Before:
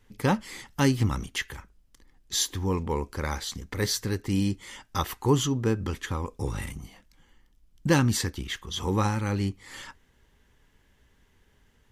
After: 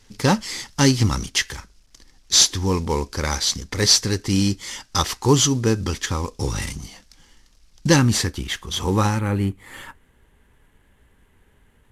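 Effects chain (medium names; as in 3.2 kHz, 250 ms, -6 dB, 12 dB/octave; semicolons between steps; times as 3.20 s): CVSD coder 64 kbps; peaking EQ 5.3 kHz +11.5 dB 1 oct, from 7.96 s +2.5 dB, from 9.19 s -14 dB; trim +6 dB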